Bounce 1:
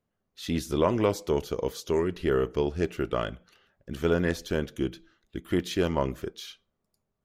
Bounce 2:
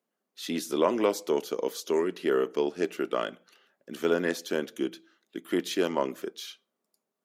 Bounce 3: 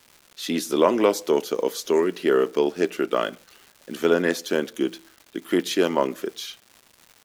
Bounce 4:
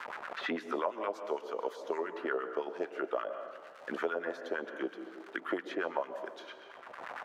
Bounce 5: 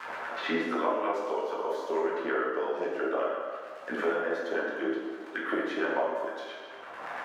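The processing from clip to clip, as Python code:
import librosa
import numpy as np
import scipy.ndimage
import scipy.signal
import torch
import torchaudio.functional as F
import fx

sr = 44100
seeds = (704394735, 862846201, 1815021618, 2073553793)

y1 = scipy.signal.sosfilt(scipy.signal.butter(4, 230.0, 'highpass', fs=sr, output='sos'), x)
y1 = fx.peak_eq(y1, sr, hz=12000.0, db=3.5, octaves=1.7)
y2 = fx.dmg_crackle(y1, sr, seeds[0], per_s=370.0, level_db=-44.0)
y2 = y2 * librosa.db_to_amplitude(6.0)
y3 = fx.filter_lfo_bandpass(y2, sr, shape='sine', hz=8.8, low_hz=600.0, high_hz=1600.0, q=2.7)
y3 = fx.rev_plate(y3, sr, seeds[1], rt60_s=0.85, hf_ratio=0.75, predelay_ms=105, drr_db=11.0)
y3 = fx.band_squash(y3, sr, depth_pct=100)
y3 = y3 * librosa.db_to_amplitude(-4.5)
y4 = fx.rev_plate(y3, sr, seeds[2], rt60_s=1.2, hf_ratio=0.75, predelay_ms=0, drr_db=-4.5)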